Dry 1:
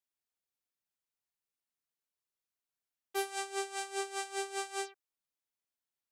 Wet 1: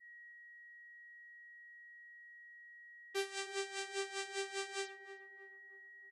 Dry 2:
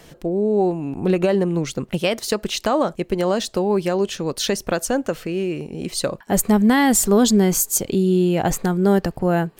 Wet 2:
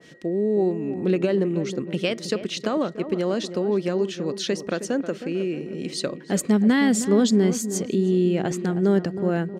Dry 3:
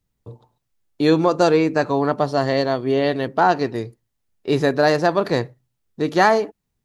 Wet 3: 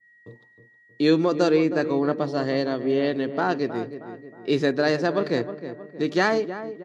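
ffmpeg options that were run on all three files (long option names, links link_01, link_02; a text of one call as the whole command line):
ffmpeg -i in.wav -filter_complex "[0:a]highpass=190,lowpass=6300,equalizer=frequency=840:width=1.2:gain=-11,aeval=exprs='val(0)+0.00224*sin(2*PI*1900*n/s)':channel_layout=same,asplit=2[link_01][link_02];[link_02]adelay=315,lowpass=frequency=1300:poles=1,volume=-10.5dB,asplit=2[link_03][link_04];[link_04]adelay=315,lowpass=frequency=1300:poles=1,volume=0.49,asplit=2[link_05][link_06];[link_06]adelay=315,lowpass=frequency=1300:poles=1,volume=0.49,asplit=2[link_07][link_08];[link_08]adelay=315,lowpass=frequency=1300:poles=1,volume=0.49,asplit=2[link_09][link_10];[link_10]adelay=315,lowpass=frequency=1300:poles=1,volume=0.49[link_11];[link_03][link_05][link_07][link_09][link_11]amix=inputs=5:normalize=0[link_12];[link_01][link_12]amix=inputs=2:normalize=0,adynamicequalizer=threshold=0.01:dfrequency=1700:dqfactor=0.7:tfrequency=1700:tqfactor=0.7:attack=5:release=100:ratio=0.375:range=2.5:mode=cutabove:tftype=highshelf" out.wav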